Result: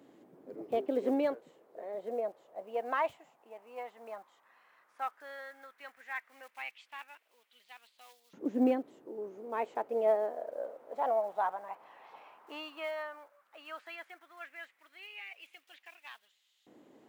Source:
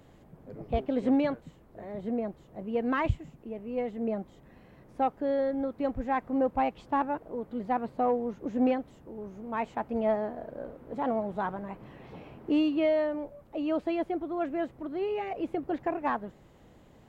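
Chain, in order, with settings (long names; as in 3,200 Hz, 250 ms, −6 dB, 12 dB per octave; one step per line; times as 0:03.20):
one scale factor per block 7 bits
auto-filter high-pass saw up 0.12 Hz 280–3,700 Hz
level −5 dB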